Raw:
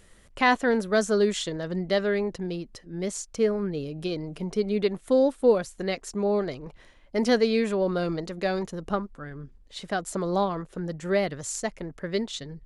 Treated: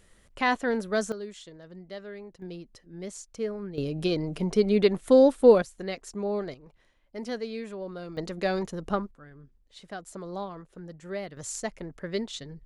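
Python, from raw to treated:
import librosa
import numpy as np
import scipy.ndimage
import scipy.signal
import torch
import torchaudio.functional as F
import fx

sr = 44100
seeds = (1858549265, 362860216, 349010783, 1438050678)

y = fx.gain(x, sr, db=fx.steps((0.0, -4.0), (1.12, -16.0), (2.42, -8.0), (3.78, 3.5), (5.62, -5.0), (6.54, -12.0), (8.17, -0.5), (9.11, -10.5), (11.37, -3.0)))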